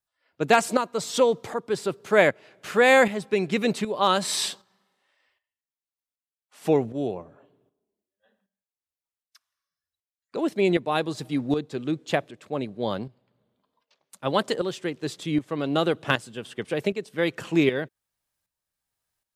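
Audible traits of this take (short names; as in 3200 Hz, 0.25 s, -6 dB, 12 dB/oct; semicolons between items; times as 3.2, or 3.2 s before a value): tremolo saw up 1.3 Hz, depth 65%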